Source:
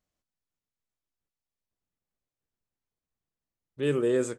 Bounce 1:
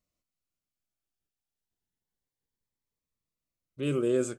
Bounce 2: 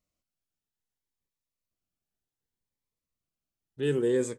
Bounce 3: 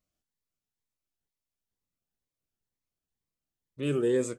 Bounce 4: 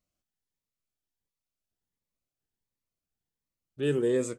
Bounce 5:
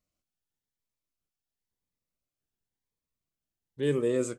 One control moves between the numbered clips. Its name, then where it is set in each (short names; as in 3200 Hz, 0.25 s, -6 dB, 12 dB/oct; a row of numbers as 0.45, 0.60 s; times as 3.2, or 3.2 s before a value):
cascading phaser, rate: 0.29, 0.65, 2.1, 1.4, 0.96 Hz